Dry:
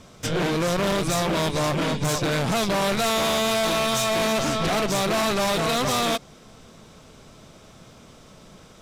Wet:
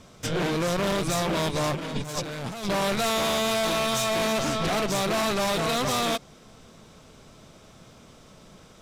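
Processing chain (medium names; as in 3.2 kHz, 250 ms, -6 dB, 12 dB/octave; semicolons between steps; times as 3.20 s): 1.75–2.65 s: compressor with a negative ratio -28 dBFS, ratio -0.5; trim -2.5 dB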